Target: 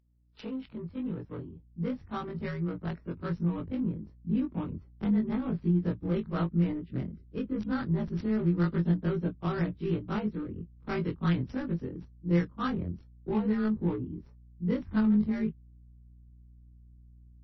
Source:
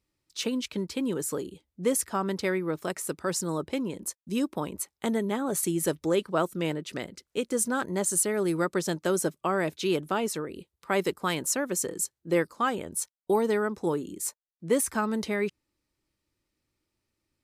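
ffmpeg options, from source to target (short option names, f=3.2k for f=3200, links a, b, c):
-filter_complex "[0:a]afftfilt=real='re':imag='-im':win_size=2048:overlap=0.75,acrossover=split=230|520|7600[a][b][c][d];[b]acompressor=threshold=-45dB:ratio=6[e];[a][e][c][d]amix=inputs=4:normalize=0,aeval=exprs='val(0)+0.000355*(sin(2*PI*60*n/s)+sin(2*PI*2*60*n/s)/2+sin(2*PI*3*60*n/s)/3+sin(2*PI*4*60*n/s)/4+sin(2*PI*5*60*n/s)/5)':c=same,adynamicsmooth=sensitivity=4:basefreq=650,asubboost=boost=8.5:cutoff=210" -ar 22050 -c:a libmp3lame -b:a 24k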